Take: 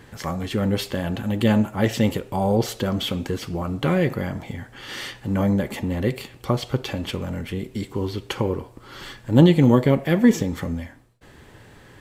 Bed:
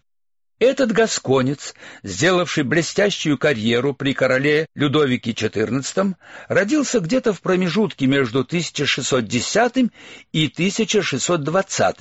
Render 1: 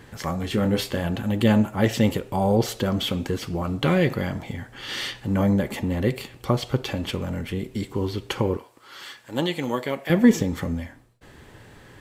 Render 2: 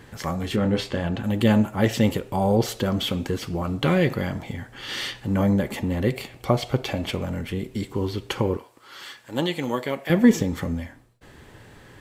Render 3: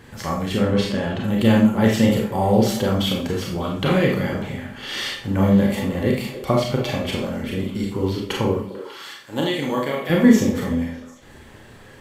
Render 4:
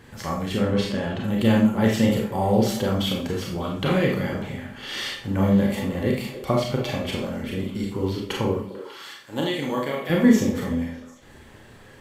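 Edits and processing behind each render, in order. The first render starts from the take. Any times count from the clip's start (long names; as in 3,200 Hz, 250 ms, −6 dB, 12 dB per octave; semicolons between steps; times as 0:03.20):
0:00.45–0:01.07: double-tracking delay 24 ms −8 dB; 0:03.62–0:05.25: dynamic equaliser 3,700 Hz, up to +5 dB, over −45 dBFS, Q 1; 0:08.57–0:10.10: high-pass filter 1,100 Hz 6 dB per octave
0:00.56–0:01.24: high-frequency loss of the air 63 metres; 0:06.15–0:07.26: hollow resonant body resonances 680/2,200 Hz, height 8 dB, ringing for 20 ms
on a send: echo through a band-pass that steps 149 ms, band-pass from 170 Hz, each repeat 1.4 octaves, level −8 dB; on the sum: four-comb reverb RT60 0.39 s, combs from 28 ms, DRR −0.5 dB
level −3 dB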